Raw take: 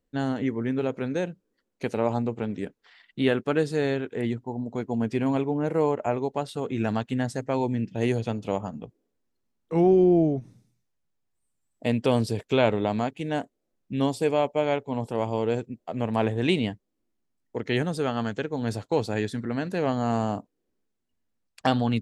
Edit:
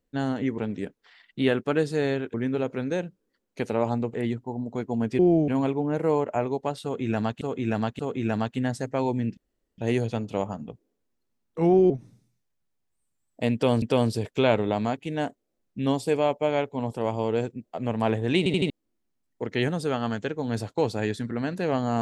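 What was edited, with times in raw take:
2.38–4.14 move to 0.58
6.54–7.12 loop, 3 plays
7.92 insert room tone 0.41 s
10.04–10.33 move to 5.19
11.96–12.25 loop, 2 plays
16.52 stutter in place 0.08 s, 4 plays

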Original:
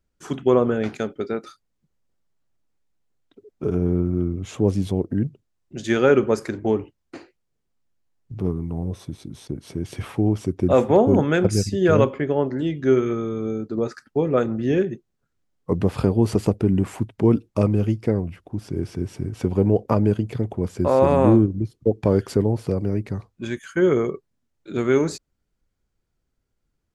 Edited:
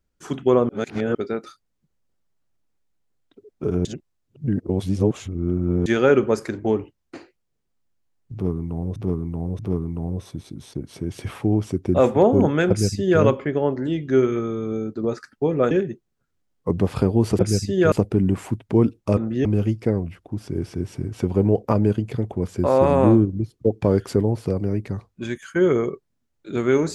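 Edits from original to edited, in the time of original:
0.69–1.15 reverse
3.85–5.86 reverse
8.33–8.96 loop, 3 plays
11.43–11.96 copy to 16.41
14.45–14.73 move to 17.66

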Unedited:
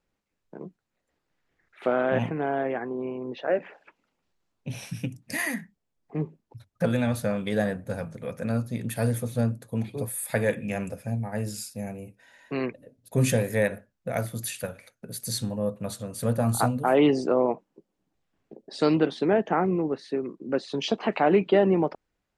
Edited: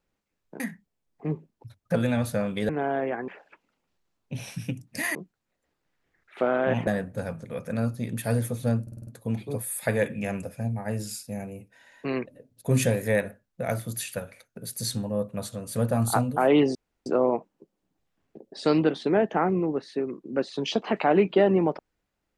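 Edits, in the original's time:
0.6–2.32 swap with 5.5–7.59
2.91–3.63 cut
9.54 stutter 0.05 s, 6 plays
17.22 insert room tone 0.31 s

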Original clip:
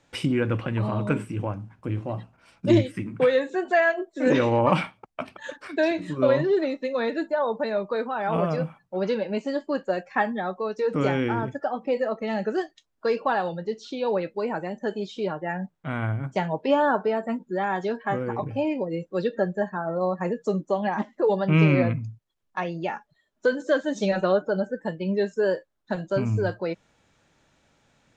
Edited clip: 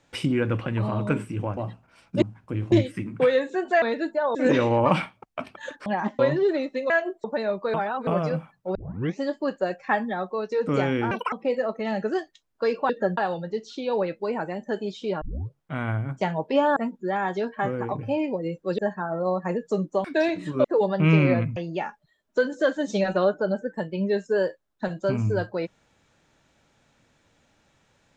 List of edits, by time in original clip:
1.57–2.07 move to 2.72
3.82–4.16 swap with 6.98–7.51
5.67–6.27 swap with 20.8–21.13
8.01–8.34 reverse
9.02 tape start 0.44 s
11.38–11.75 speed 173%
15.36 tape start 0.43 s
16.91–17.24 cut
19.26–19.54 move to 13.32
22.05–22.64 cut

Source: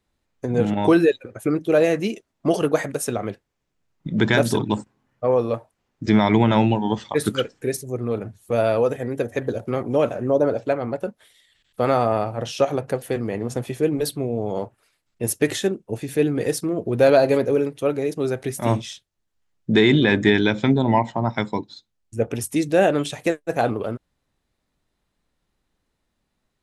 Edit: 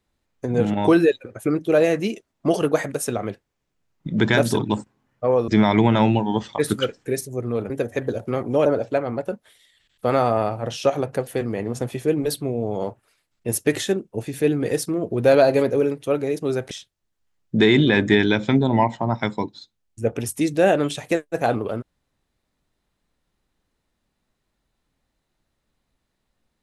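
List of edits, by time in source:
5.48–6.04 cut
8.26–9.1 cut
10.06–10.41 cut
18.46–18.86 cut

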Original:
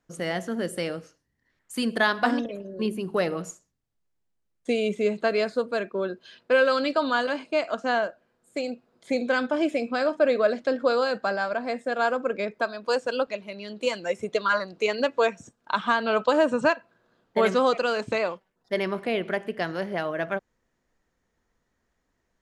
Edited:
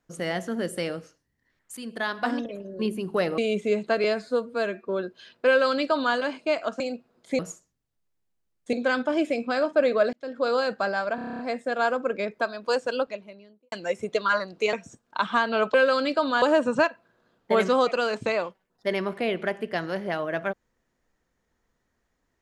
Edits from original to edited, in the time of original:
1.77–2.68 fade in, from -13 dB
3.38–4.72 move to 9.17
5.38–5.94 stretch 1.5×
6.53–7.21 copy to 16.28
7.86–8.58 cut
10.57–11 fade in
11.59 stutter 0.03 s, 9 plays
13.08–13.92 studio fade out
14.93–15.27 cut

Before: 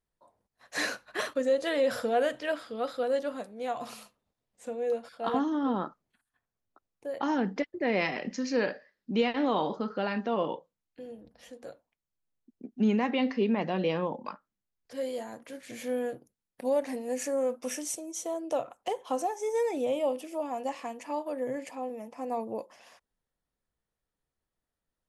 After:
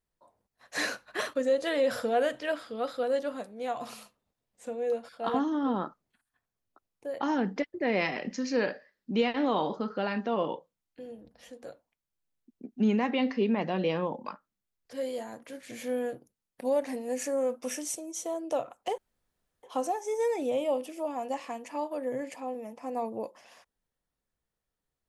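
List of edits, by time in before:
18.98 insert room tone 0.65 s

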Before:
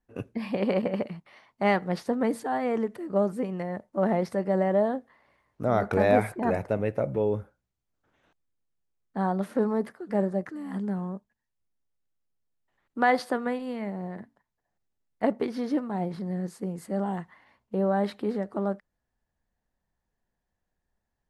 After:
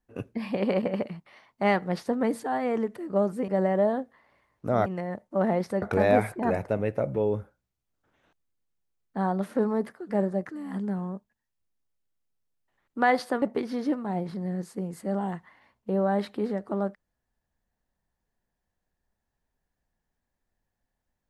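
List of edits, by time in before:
3.48–4.44 move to 5.82
13.42–15.27 cut

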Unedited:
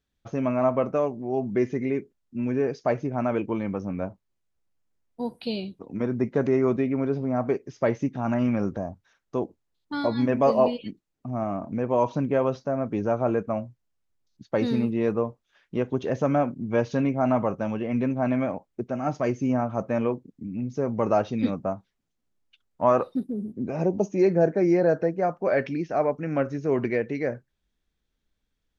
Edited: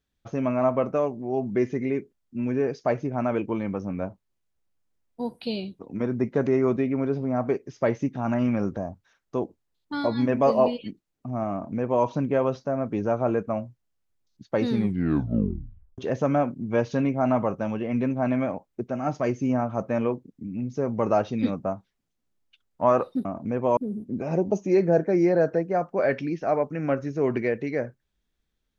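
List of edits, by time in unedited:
11.52–12.04 copy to 23.25
14.7 tape stop 1.28 s

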